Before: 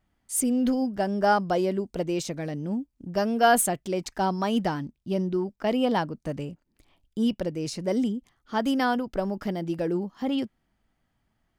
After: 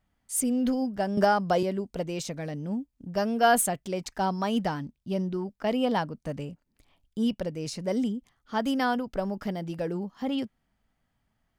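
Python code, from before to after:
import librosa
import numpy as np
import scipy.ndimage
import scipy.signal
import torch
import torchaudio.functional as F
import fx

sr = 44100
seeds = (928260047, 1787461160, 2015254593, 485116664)

y = fx.peak_eq(x, sr, hz=340.0, db=-7.0, octaves=0.26)
y = fx.band_squash(y, sr, depth_pct=100, at=(1.17, 1.63))
y = F.gain(torch.from_numpy(y), -1.5).numpy()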